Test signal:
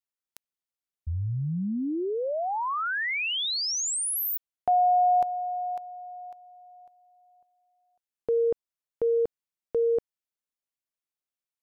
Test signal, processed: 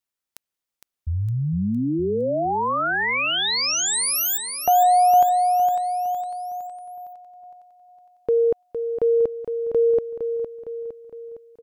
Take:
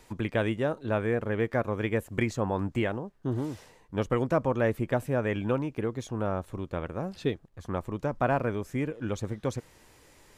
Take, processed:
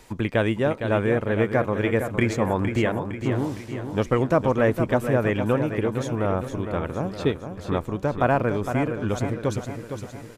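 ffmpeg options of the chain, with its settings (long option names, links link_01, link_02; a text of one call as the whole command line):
ffmpeg -i in.wav -af "aecho=1:1:460|920|1380|1840|2300|2760:0.398|0.203|0.104|0.0528|0.0269|0.0137,volume=5.5dB" out.wav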